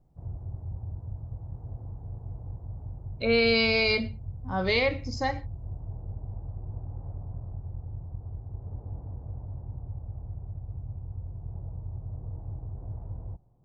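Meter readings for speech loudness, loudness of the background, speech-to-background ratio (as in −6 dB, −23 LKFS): −25.5 LKFS, −39.5 LKFS, 14.0 dB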